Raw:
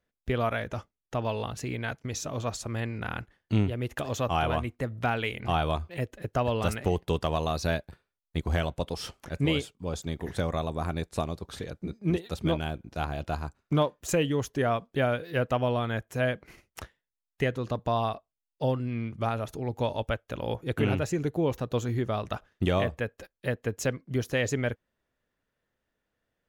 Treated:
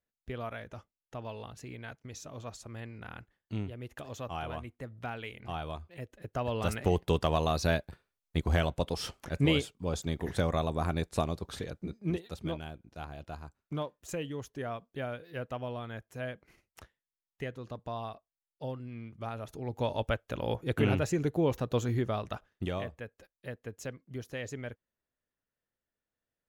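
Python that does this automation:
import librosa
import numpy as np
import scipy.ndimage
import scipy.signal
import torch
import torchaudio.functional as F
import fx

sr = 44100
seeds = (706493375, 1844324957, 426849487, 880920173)

y = fx.gain(x, sr, db=fx.line((6.03, -11.0), (6.95, 0.0), (11.47, 0.0), (12.76, -11.0), (19.16, -11.0), (20.01, -1.0), (21.96, -1.0), (22.94, -11.5)))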